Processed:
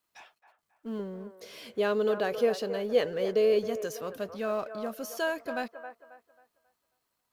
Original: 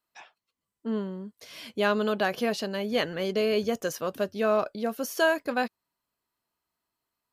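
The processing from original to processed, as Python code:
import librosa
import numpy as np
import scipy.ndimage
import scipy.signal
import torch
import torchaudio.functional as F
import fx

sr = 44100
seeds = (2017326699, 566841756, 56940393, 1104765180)

y = fx.law_mismatch(x, sr, coded='mu')
y = fx.peak_eq(y, sr, hz=470.0, db=13.0, octaves=0.46, at=(0.99, 3.59))
y = fx.echo_wet_bandpass(y, sr, ms=270, feedback_pct=32, hz=880.0, wet_db=-8.5)
y = F.gain(torch.from_numpy(y), -7.5).numpy()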